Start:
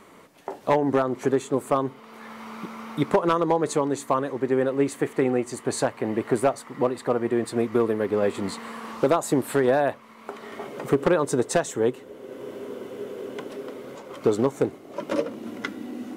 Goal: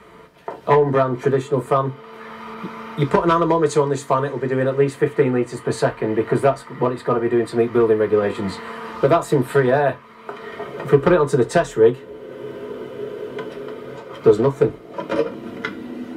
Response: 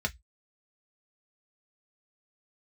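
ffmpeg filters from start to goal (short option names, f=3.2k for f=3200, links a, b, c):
-filter_complex "[0:a]asettb=1/sr,asplit=3[a][b][c];[a]atrim=end=2.544[d];[b]atrim=start=2.54:end=4.78,asetpts=PTS-STARTPTS,afade=t=in:d=0.004:c=qsin,afade=t=out:st=2.236:d=0.004:c=qsin,adynamicequalizer=threshold=0.00316:dfrequency=7000:dqfactor=0.97:tfrequency=7000:tqfactor=0.97:attack=5:release=100:ratio=0.375:range=3:mode=boostabove:tftype=bell[e];[c]atrim=start=4.776[f];[d][e]acrossfade=d=0.004:c1=hsin:c2=qsin[g];[g][f]acrossfade=d=0.004:c1=qsin:c2=hsin[h];[1:a]atrim=start_sample=2205,asetrate=30429,aresample=44100[i];[h][i]afir=irnorm=-1:irlink=0,volume=-3.5dB"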